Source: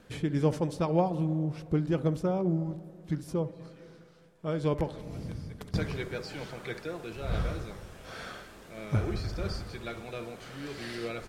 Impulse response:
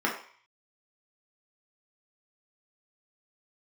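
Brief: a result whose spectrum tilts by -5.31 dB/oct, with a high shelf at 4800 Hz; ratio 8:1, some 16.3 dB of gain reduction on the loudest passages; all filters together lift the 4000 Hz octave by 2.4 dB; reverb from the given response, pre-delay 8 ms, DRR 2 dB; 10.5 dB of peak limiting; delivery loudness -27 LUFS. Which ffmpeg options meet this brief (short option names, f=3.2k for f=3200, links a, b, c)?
-filter_complex "[0:a]equalizer=f=4k:t=o:g=6,highshelf=f=4.8k:g=-6.5,acompressor=threshold=-39dB:ratio=8,alimiter=level_in=12.5dB:limit=-24dB:level=0:latency=1,volume=-12.5dB,asplit=2[a][b];[1:a]atrim=start_sample=2205,adelay=8[c];[b][c]afir=irnorm=-1:irlink=0,volume=-13.5dB[d];[a][d]amix=inputs=2:normalize=0,volume=17dB"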